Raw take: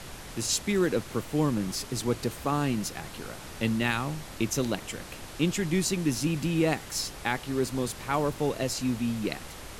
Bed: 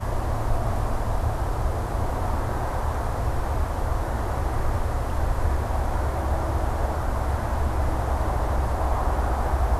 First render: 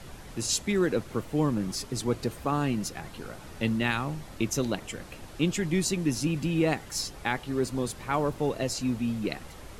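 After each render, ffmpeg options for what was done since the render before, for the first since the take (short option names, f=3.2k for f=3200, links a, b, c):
-af "afftdn=nr=7:nf=-43"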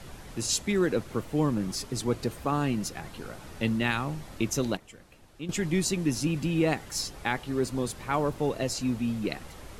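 -filter_complex "[0:a]asplit=3[a][b][c];[a]atrim=end=4.772[d];[b]atrim=start=4.768:end=5.492,asetpts=PTS-STARTPTS,volume=-12dB[e];[c]atrim=start=5.488[f];[d][e]acrossfade=d=0.004:c1=hsin:c2=hsin[g];[g][f]acrossfade=d=0.004:c1=hsin:c2=hsin"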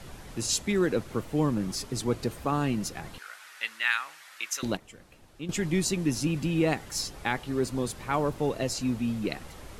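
-filter_complex "[0:a]asettb=1/sr,asplit=3[a][b][c];[a]atrim=end=3.184[d];[b]atrim=start=3.18:end=4.63,asetpts=PTS-STARTPTS,afade=t=in:d=0.004:c=qsin,afade=t=out:st=1.446:d=0.004:c=qsin,highpass=f=1.6k:t=q:w=1.8[e];[c]atrim=start=4.626[f];[d][e]acrossfade=d=0.004:c1=hsin:c2=qsin[g];[g][f]acrossfade=d=0.004:c1=qsin:c2=hsin"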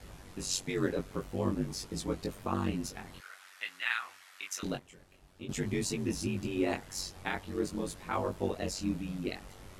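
-af "aeval=exprs='val(0)*sin(2*PI*47*n/s)':c=same,flanger=delay=18:depth=5.2:speed=0.5"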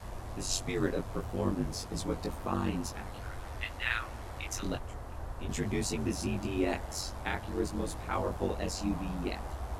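-filter_complex "[1:a]volume=-16.5dB[a];[0:a][a]amix=inputs=2:normalize=0"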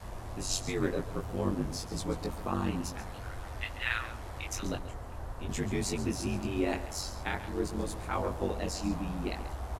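-af "aecho=1:1:136:0.211"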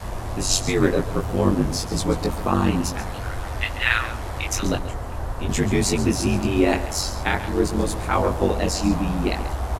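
-af "volume=12dB"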